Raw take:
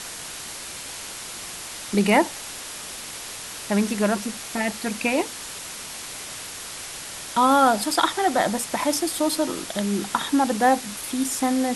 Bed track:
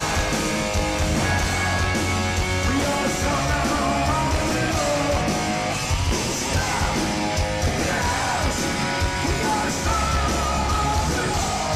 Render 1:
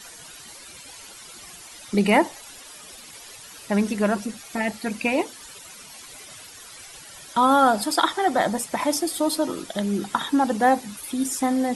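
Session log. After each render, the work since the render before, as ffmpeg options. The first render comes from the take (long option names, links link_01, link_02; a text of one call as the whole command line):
ffmpeg -i in.wav -af "afftdn=noise_reduction=13:noise_floor=-36" out.wav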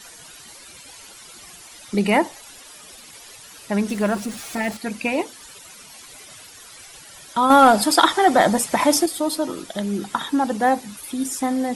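ffmpeg -i in.wav -filter_complex "[0:a]asettb=1/sr,asplit=3[link_01][link_02][link_03];[link_01]atrim=end=3.894[link_04];[link_02]atrim=start=3.89:end=4.77,asetpts=PTS-STARTPTS,afade=type=in:duration=0.004:curve=qsin,afade=type=out:start_time=0.876:duration=0.004:curve=qsin,aeval=exprs='val(0)+0.5*0.02*sgn(val(0))':channel_layout=same[link_05];[link_03]atrim=start=4.766[link_06];[link_04][link_05]acrossfade=duration=0.004:curve1=hsin:curve2=qsin[link_07];[link_07][link_06]acrossfade=duration=0.004:curve1=qsin:curve2=hsin,asettb=1/sr,asplit=3[link_08][link_09][link_10];[link_08]atrim=end=7.504[link_11];[link_09]atrim=start=7.5:end=9.06,asetpts=PTS-STARTPTS,afade=type=in:duration=0.004:curve=qsin,afade=type=out:start_time=1.556:duration=0.004:curve=qsin,acontrast=65[link_12];[link_10]atrim=start=9.056[link_13];[link_11][link_12]acrossfade=duration=0.004:curve1=hsin:curve2=qsin[link_14];[link_14][link_13]acrossfade=duration=0.004:curve1=qsin:curve2=hsin" out.wav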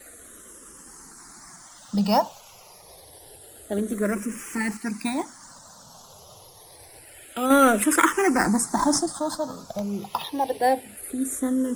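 ffmpeg -i in.wav -filter_complex "[0:a]acrossover=split=200|1300|4700[link_01][link_02][link_03][link_04];[link_03]acrusher=samples=12:mix=1:aa=0.000001:lfo=1:lforange=12:lforate=0.36[link_05];[link_01][link_02][link_05][link_04]amix=inputs=4:normalize=0,asplit=2[link_06][link_07];[link_07]afreqshift=-0.27[link_08];[link_06][link_08]amix=inputs=2:normalize=1" out.wav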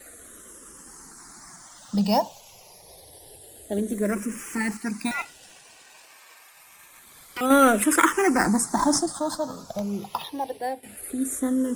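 ffmpeg -i in.wav -filter_complex "[0:a]asettb=1/sr,asplit=3[link_01][link_02][link_03];[link_01]atrim=end=2.024[link_04];[link_02]atrim=start=2.02:end=4.1,asetpts=PTS-STARTPTS,afade=type=in:duration=0.004:curve=qsin,afade=type=out:start_time=2.076:duration=0.004:curve=qsin,equalizer=frequency=1300:width=3:gain=-14[link_05];[link_03]atrim=start=4.096[link_06];[link_04][link_05]acrossfade=duration=0.004:curve1=hsin:curve2=qsin[link_07];[link_07][link_06]acrossfade=duration=0.004:curve1=qsin:curve2=hsin,asettb=1/sr,asplit=3[link_08][link_09][link_10];[link_08]atrim=end=5.114[link_11];[link_09]atrim=start=5.11:end=7.41,asetpts=PTS-STARTPTS,afade=type=in:duration=0.004:curve=qsin,afade=type=out:start_time=2.296:duration=0.004:curve=qsin,aeval=exprs='val(0)*sin(2*PI*1700*n/s)':channel_layout=same[link_12];[link_10]atrim=start=7.406[link_13];[link_11][link_12]acrossfade=duration=0.004:curve1=hsin:curve2=qsin[link_14];[link_14][link_13]acrossfade=duration=0.004:curve1=qsin:curve2=hsin,asplit=2[link_15][link_16];[link_15]atrim=end=10.83,asetpts=PTS-STARTPTS,afade=type=out:start_time=9.94:duration=0.89:silence=0.223872[link_17];[link_16]atrim=start=10.83,asetpts=PTS-STARTPTS,afade=type=in:duration=0.004:curve=hsin:silence=0.223872[link_18];[link_17][link_18]concat=n=2:v=0:a=1" out.wav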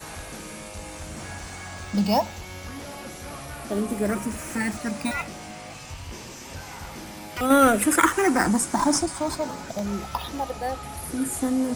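ffmpeg -i in.wav -i bed.wav -filter_complex "[1:a]volume=-16dB[link_01];[0:a][link_01]amix=inputs=2:normalize=0" out.wav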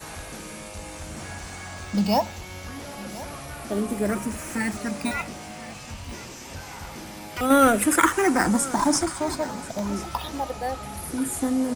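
ffmpeg -i in.wav -af "aecho=1:1:1033:0.133" out.wav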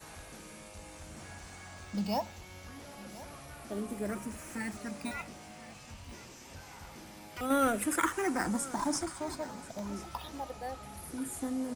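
ffmpeg -i in.wav -af "volume=-11dB" out.wav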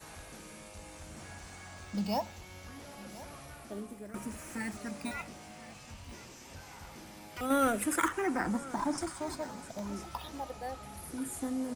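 ffmpeg -i in.wav -filter_complex "[0:a]asettb=1/sr,asplit=3[link_01][link_02][link_03];[link_01]atrim=end=8.084[link_04];[link_02]atrim=start=8.08:end=8.98,asetpts=PTS-STARTPTS,afade=type=in:duration=0.004:curve=qsin,afade=type=out:start_time=0.896:duration=0.004:curve=qsin,acrossover=split=3600[link_05][link_06];[link_06]acompressor=threshold=-51dB:ratio=4:attack=1:release=60[link_07];[link_05][link_07]amix=inputs=2:normalize=0[link_08];[link_03]atrim=start=8.976[link_09];[link_04][link_08]acrossfade=duration=0.004:curve1=hsin:curve2=qsin[link_10];[link_10][link_09]acrossfade=duration=0.004:curve1=qsin:curve2=hsin,asplit=2[link_11][link_12];[link_11]atrim=end=4.14,asetpts=PTS-STARTPTS,afade=type=out:start_time=3.46:duration=0.68:silence=0.188365[link_13];[link_12]atrim=start=4.14,asetpts=PTS-STARTPTS,afade=type=in:duration=0.004:curve=hsin:silence=0.188365[link_14];[link_13][link_14]concat=n=2:v=0:a=1" out.wav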